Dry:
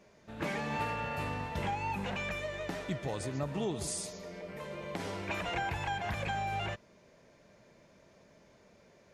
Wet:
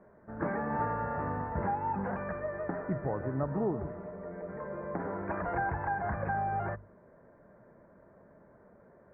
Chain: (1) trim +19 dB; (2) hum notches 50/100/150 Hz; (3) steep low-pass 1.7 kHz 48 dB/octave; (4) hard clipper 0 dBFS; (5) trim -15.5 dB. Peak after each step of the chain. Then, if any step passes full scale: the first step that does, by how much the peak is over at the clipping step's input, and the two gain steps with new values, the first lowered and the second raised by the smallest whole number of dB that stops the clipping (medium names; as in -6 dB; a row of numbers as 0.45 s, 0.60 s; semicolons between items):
-5.0 dBFS, -4.5 dBFS, -5.0 dBFS, -5.0 dBFS, -20.5 dBFS; nothing clips